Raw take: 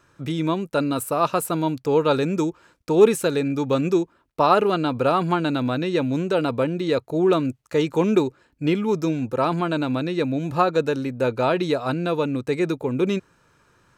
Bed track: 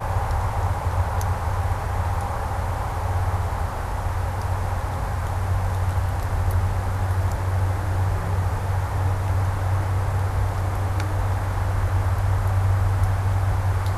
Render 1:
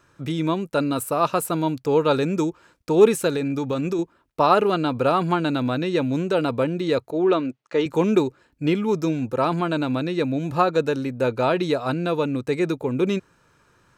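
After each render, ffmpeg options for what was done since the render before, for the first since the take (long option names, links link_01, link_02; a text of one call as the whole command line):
ffmpeg -i in.wav -filter_complex "[0:a]asettb=1/sr,asplit=3[link_01][link_02][link_03];[link_01]atrim=end=3.364[link_04];[link_02]atrim=start=3.36:end=3.99,asetpts=PTS-STARTPTS,afade=type=in:duration=0.004:curve=qsin,afade=type=out:start_time=0.626:duration=0.004:curve=qsin,acompressor=threshold=-20dB:ratio=6:attack=3.2:release=140:knee=1:detection=peak[link_05];[link_03]atrim=start=3.986[link_06];[link_04][link_05]acrossfade=duration=0.004:curve1=hsin:curve2=qsin[link_07];[link_07][link_06]acrossfade=duration=0.004:curve1=qsin:curve2=hsin,asettb=1/sr,asplit=3[link_08][link_09][link_10];[link_08]atrim=end=7.114[link_11];[link_09]atrim=start=7.11:end=7.86,asetpts=PTS-STARTPTS,afade=type=in:duration=0.004:curve=qsin,afade=type=out:start_time=0.746:duration=0.004:curve=qsin,highpass=240,lowpass=4300[link_12];[link_10]atrim=start=7.856[link_13];[link_11][link_12]acrossfade=duration=0.004:curve1=hsin:curve2=qsin[link_14];[link_14][link_13]acrossfade=duration=0.004:curve1=qsin:curve2=hsin" out.wav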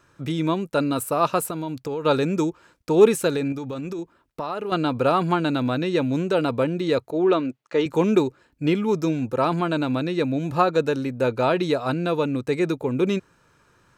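ffmpeg -i in.wav -filter_complex "[0:a]asettb=1/sr,asplit=3[link_01][link_02][link_03];[link_01]atrim=end=1.484[link_04];[link_02]atrim=start=1.48:end=2.05,asetpts=PTS-STARTPTS,afade=type=in:duration=0.004:curve=qsin,afade=type=out:start_time=0.566:duration=0.004:curve=qsin,acompressor=threshold=-25dB:ratio=6:attack=3.2:release=140:knee=1:detection=peak[link_05];[link_03]atrim=start=2.046[link_06];[link_04][link_05]acrossfade=duration=0.004:curve1=hsin:curve2=qsin[link_07];[link_07][link_06]acrossfade=duration=0.004:curve1=qsin:curve2=hsin,asettb=1/sr,asplit=3[link_08][link_09][link_10];[link_08]atrim=end=3.524[link_11];[link_09]atrim=start=3.52:end=4.72,asetpts=PTS-STARTPTS,afade=type=in:duration=0.004:curve=qsin,afade=type=out:start_time=1.196:duration=0.004:curve=qsin,acompressor=threshold=-29dB:ratio=3:attack=3.2:release=140:knee=1:detection=peak[link_12];[link_10]atrim=start=4.716[link_13];[link_11][link_12]acrossfade=duration=0.004:curve1=hsin:curve2=qsin[link_14];[link_14][link_13]acrossfade=duration=0.004:curve1=qsin:curve2=hsin" out.wav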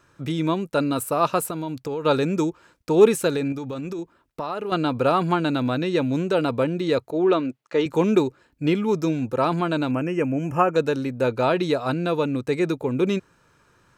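ffmpeg -i in.wav -filter_complex "[0:a]asettb=1/sr,asplit=3[link_01][link_02][link_03];[link_01]atrim=end=9.914[link_04];[link_02]atrim=start=9.91:end=10.76,asetpts=PTS-STARTPTS,afade=type=in:duration=0.004:curve=qsin,afade=type=out:start_time=0.846:duration=0.004:curve=qsin,asuperstop=centerf=4000:order=20:qfactor=2.1[link_05];[link_03]atrim=start=10.756[link_06];[link_04][link_05]acrossfade=duration=0.004:curve1=hsin:curve2=qsin[link_07];[link_07][link_06]acrossfade=duration=0.004:curve1=qsin:curve2=hsin" out.wav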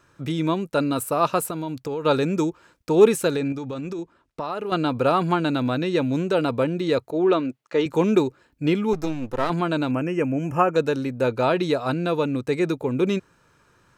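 ffmpeg -i in.wav -filter_complex "[0:a]asettb=1/sr,asplit=3[link_01][link_02][link_03];[link_01]atrim=end=3.374[link_04];[link_02]atrim=start=3.37:end=4.45,asetpts=PTS-STARTPTS,afade=type=in:duration=0.004:curve=qsin,afade=type=out:start_time=1.076:duration=0.004:curve=qsin,lowpass=9200[link_05];[link_03]atrim=start=4.446[link_06];[link_04][link_05]acrossfade=duration=0.004:curve1=hsin:curve2=qsin[link_07];[link_07][link_06]acrossfade=duration=0.004:curve1=qsin:curve2=hsin,asettb=1/sr,asplit=3[link_08][link_09][link_10];[link_08]atrim=end=8.934[link_11];[link_09]atrim=start=8.93:end=9.5,asetpts=PTS-STARTPTS,afade=type=in:duration=0.004:curve=qsin,afade=type=out:start_time=0.566:duration=0.004:curve=qsin,aeval=exprs='if(lt(val(0),0),0.251*val(0),val(0))':channel_layout=same[link_12];[link_10]atrim=start=9.496[link_13];[link_11][link_12]acrossfade=duration=0.004:curve1=hsin:curve2=qsin[link_14];[link_14][link_13]acrossfade=duration=0.004:curve1=qsin:curve2=hsin" out.wav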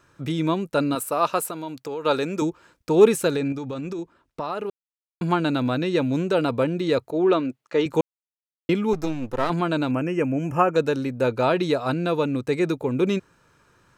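ffmpeg -i in.wav -filter_complex "[0:a]asettb=1/sr,asplit=3[link_01][link_02][link_03];[link_01]atrim=end=0.954[link_04];[link_02]atrim=start=0.95:end=2.42,asetpts=PTS-STARTPTS,afade=type=in:duration=0.004:curve=qsin,afade=type=out:start_time=1.466:duration=0.004:curve=qsin,highpass=frequency=360:poles=1[link_05];[link_03]atrim=start=2.416[link_06];[link_04][link_05]acrossfade=duration=0.004:curve1=hsin:curve2=qsin[link_07];[link_07][link_06]acrossfade=duration=0.004:curve1=qsin:curve2=hsin,asplit=5[link_08][link_09][link_10][link_11][link_12];[link_08]atrim=end=4.7,asetpts=PTS-STARTPTS,afade=type=out:start_time=4.696:duration=0.004:curve=hsin[link_13];[link_09]atrim=start=4.7:end=5.21,asetpts=PTS-STARTPTS,volume=0[link_14];[link_10]atrim=start=5.21:end=8.01,asetpts=PTS-STARTPTS,afade=type=in:duration=0.004:curve=hsin,afade=type=out:start_time=2.796:duration=0.004:curve=hsin[link_15];[link_11]atrim=start=8.01:end=8.69,asetpts=PTS-STARTPTS,volume=0[link_16];[link_12]atrim=start=8.69,asetpts=PTS-STARTPTS,afade=type=in:duration=0.004:curve=hsin[link_17];[link_13][link_14][link_15][link_16][link_17]concat=n=5:v=0:a=1" out.wav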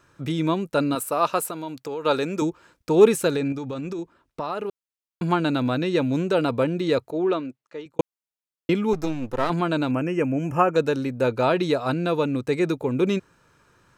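ffmpeg -i in.wav -filter_complex "[0:a]asplit=2[link_01][link_02];[link_01]atrim=end=7.99,asetpts=PTS-STARTPTS,afade=type=out:start_time=6.93:duration=1.06[link_03];[link_02]atrim=start=7.99,asetpts=PTS-STARTPTS,afade=type=in:duration=0.004:curve=hsin[link_04];[link_03][link_04]concat=n=2:v=0:a=1" out.wav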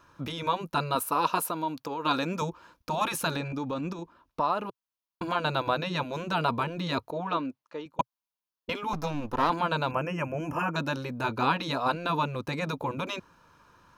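ffmpeg -i in.wav -af "afftfilt=real='re*lt(hypot(re,im),0.398)':imag='im*lt(hypot(re,im),0.398)':win_size=1024:overlap=0.75,equalizer=frequency=125:width_type=o:width=0.33:gain=-6,equalizer=frequency=400:width_type=o:width=0.33:gain=-6,equalizer=frequency=1000:width_type=o:width=0.33:gain=8,equalizer=frequency=2000:width_type=o:width=0.33:gain=-5,equalizer=frequency=8000:width_type=o:width=0.33:gain=-11" out.wav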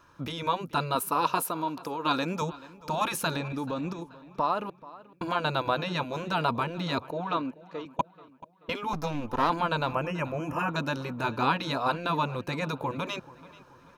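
ffmpeg -i in.wav -filter_complex "[0:a]asplit=2[link_01][link_02];[link_02]adelay=433,lowpass=frequency=4300:poles=1,volume=-19dB,asplit=2[link_03][link_04];[link_04]adelay=433,lowpass=frequency=4300:poles=1,volume=0.48,asplit=2[link_05][link_06];[link_06]adelay=433,lowpass=frequency=4300:poles=1,volume=0.48,asplit=2[link_07][link_08];[link_08]adelay=433,lowpass=frequency=4300:poles=1,volume=0.48[link_09];[link_01][link_03][link_05][link_07][link_09]amix=inputs=5:normalize=0" out.wav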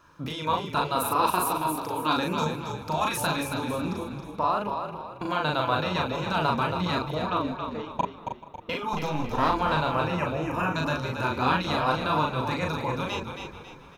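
ffmpeg -i in.wav -filter_complex "[0:a]asplit=2[link_01][link_02];[link_02]adelay=39,volume=-2.5dB[link_03];[link_01][link_03]amix=inputs=2:normalize=0,asplit=6[link_04][link_05][link_06][link_07][link_08][link_09];[link_05]adelay=274,afreqshift=-38,volume=-6.5dB[link_10];[link_06]adelay=548,afreqshift=-76,volume=-14.7dB[link_11];[link_07]adelay=822,afreqshift=-114,volume=-22.9dB[link_12];[link_08]adelay=1096,afreqshift=-152,volume=-31dB[link_13];[link_09]adelay=1370,afreqshift=-190,volume=-39.2dB[link_14];[link_04][link_10][link_11][link_12][link_13][link_14]amix=inputs=6:normalize=0" out.wav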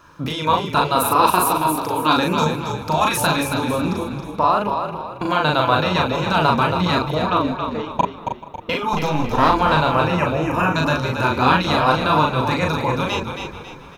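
ffmpeg -i in.wav -af "volume=8.5dB" out.wav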